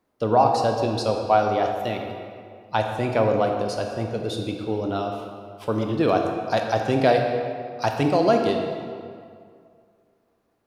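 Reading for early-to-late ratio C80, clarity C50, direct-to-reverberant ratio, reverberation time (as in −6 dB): 5.0 dB, 4.0 dB, 2.5 dB, 2.2 s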